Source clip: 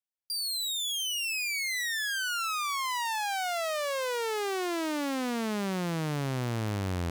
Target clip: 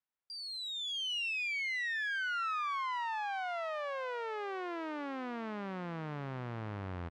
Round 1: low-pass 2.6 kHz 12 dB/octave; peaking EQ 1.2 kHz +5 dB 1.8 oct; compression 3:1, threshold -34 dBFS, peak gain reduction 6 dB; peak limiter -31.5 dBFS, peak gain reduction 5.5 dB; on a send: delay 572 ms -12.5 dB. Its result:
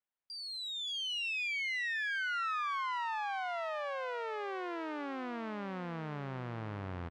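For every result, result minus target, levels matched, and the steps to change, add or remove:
compression: peak gain reduction +6 dB; echo-to-direct +7 dB
remove: compression 3:1, threshold -34 dBFS, peak gain reduction 6 dB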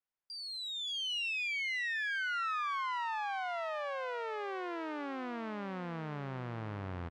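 echo-to-direct +7 dB
change: delay 572 ms -19.5 dB

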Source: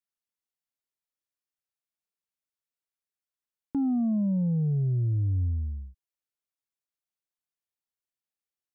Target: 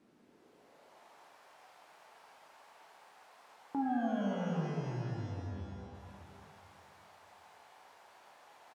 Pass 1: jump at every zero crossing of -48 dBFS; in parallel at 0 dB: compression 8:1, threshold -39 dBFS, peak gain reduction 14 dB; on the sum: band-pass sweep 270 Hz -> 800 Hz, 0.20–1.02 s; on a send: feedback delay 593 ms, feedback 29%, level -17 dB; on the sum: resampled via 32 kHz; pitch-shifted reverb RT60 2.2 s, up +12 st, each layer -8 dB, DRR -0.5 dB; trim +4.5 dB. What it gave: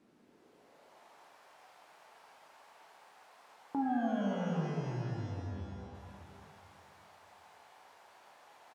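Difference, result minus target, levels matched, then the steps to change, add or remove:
compression: peak gain reduction -5.5 dB
change: compression 8:1, threshold -45.5 dBFS, peak gain reduction 19.5 dB

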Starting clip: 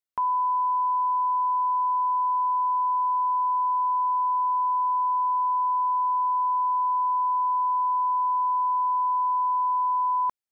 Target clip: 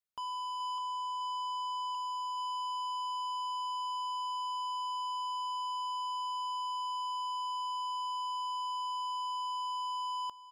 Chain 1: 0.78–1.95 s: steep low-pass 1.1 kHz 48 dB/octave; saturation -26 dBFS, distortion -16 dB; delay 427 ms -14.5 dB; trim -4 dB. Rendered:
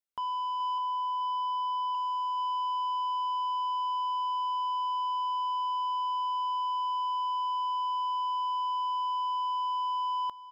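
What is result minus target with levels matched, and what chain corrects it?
saturation: distortion -6 dB
0.78–1.95 s: steep low-pass 1.1 kHz 48 dB/octave; saturation -33 dBFS, distortion -10 dB; delay 427 ms -14.5 dB; trim -4 dB

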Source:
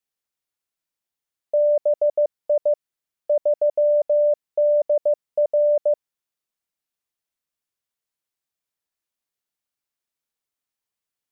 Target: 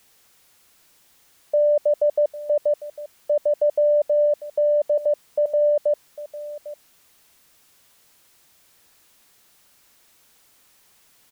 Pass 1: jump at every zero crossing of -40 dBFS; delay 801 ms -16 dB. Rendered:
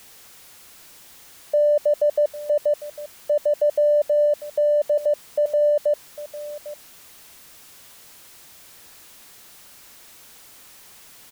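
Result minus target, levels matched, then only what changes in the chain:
jump at every zero crossing: distortion +11 dB
change: jump at every zero crossing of -51 dBFS

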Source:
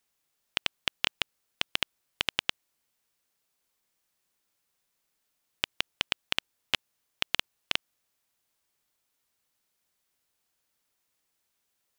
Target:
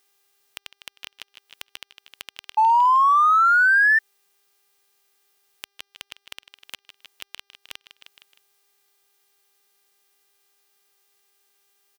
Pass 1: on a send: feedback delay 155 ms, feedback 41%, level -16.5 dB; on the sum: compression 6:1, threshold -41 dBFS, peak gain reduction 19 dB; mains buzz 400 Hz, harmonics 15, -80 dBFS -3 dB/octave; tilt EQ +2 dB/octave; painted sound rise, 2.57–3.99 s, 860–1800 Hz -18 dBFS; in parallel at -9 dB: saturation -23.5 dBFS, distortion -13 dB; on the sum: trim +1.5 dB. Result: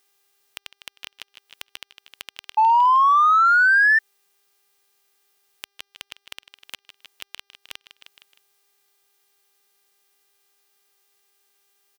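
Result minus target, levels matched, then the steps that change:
saturation: distortion -4 dB
change: saturation -32 dBFS, distortion -8 dB

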